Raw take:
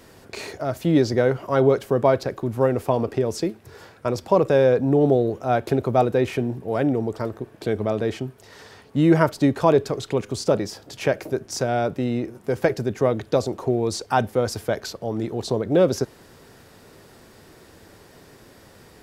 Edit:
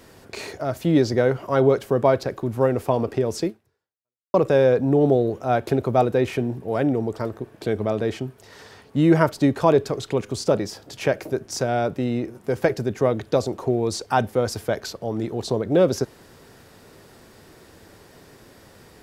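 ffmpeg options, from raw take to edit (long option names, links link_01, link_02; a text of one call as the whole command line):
ffmpeg -i in.wav -filter_complex "[0:a]asplit=2[link_01][link_02];[link_01]atrim=end=4.34,asetpts=PTS-STARTPTS,afade=type=out:start_time=3.47:duration=0.87:curve=exp[link_03];[link_02]atrim=start=4.34,asetpts=PTS-STARTPTS,afade=type=in:duration=0.004:curve=hsin[link_04];[link_03][link_04]concat=n=2:v=0:a=1" out.wav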